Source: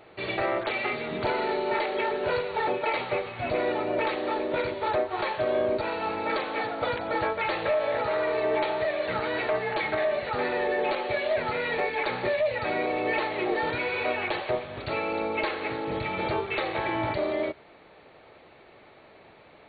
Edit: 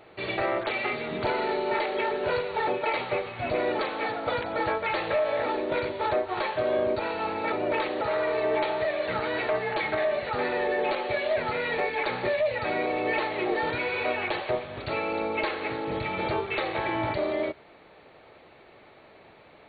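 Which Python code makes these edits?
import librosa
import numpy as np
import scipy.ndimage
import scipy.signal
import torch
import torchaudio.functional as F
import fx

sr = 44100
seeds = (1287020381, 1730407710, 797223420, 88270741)

y = fx.edit(x, sr, fx.swap(start_s=3.79, length_s=0.49, other_s=6.34, other_length_s=1.67), tone=tone)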